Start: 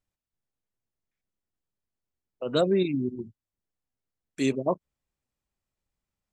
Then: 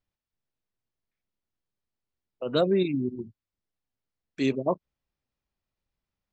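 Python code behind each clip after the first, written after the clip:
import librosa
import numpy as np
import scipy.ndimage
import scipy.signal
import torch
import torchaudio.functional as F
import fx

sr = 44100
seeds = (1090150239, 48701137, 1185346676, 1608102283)

y = scipy.signal.sosfilt(scipy.signal.butter(4, 5500.0, 'lowpass', fs=sr, output='sos'), x)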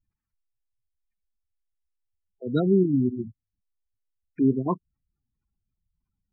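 y = fx.spec_gate(x, sr, threshold_db=-15, keep='strong')
y = fx.fixed_phaser(y, sr, hz=1400.0, stages=4)
y = F.gain(torch.from_numpy(y), 8.5).numpy()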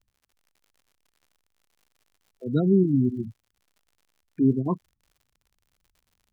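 y = fx.low_shelf(x, sr, hz=310.0, db=9.5)
y = fx.dmg_crackle(y, sr, seeds[0], per_s=89.0, level_db=-45.0)
y = F.gain(torch.from_numpy(y), -5.0).numpy()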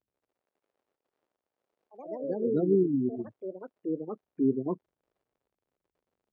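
y = fx.bandpass_q(x, sr, hz=440.0, q=1.5)
y = fx.echo_pitch(y, sr, ms=158, semitones=3, count=3, db_per_echo=-6.0)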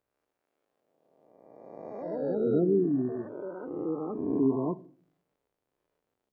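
y = fx.spec_swells(x, sr, rise_s=1.71)
y = fx.room_shoebox(y, sr, seeds[1], volume_m3=400.0, walls='furnished', distance_m=0.38)
y = F.gain(torch.from_numpy(y), -2.0).numpy()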